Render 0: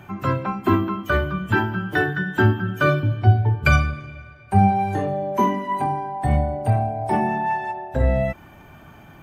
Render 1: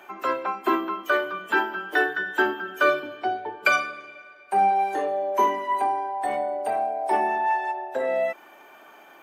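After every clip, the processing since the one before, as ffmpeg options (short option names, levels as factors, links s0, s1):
-af "highpass=f=370:w=0.5412,highpass=f=370:w=1.3066"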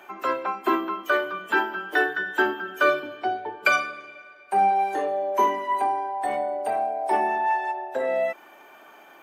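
-af anull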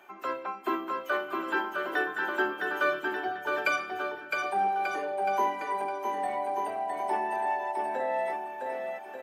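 -af "aecho=1:1:660|1188|1610|1948|2219:0.631|0.398|0.251|0.158|0.1,volume=0.422"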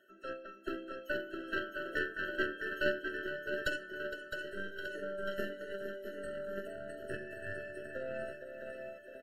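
-af "aecho=1:1:462:0.422,aeval=exprs='0.2*(cos(1*acos(clip(val(0)/0.2,-1,1)))-cos(1*PI/2))+0.0708*(cos(2*acos(clip(val(0)/0.2,-1,1)))-cos(2*PI/2))+0.0316*(cos(3*acos(clip(val(0)/0.2,-1,1)))-cos(3*PI/2))+0.00112*(cos(8*acos(clip(val(0)/0.2,-1,1)))-cos(8*PI/2))':c=same,afftfilt=real='re*eq(mod(floor(b*sr/1024/650),2),0)':imag='im*eq(mod(floor(b*sr/1024/650),2),0)':win_size=1024:overlap=0.75,volume=0.75"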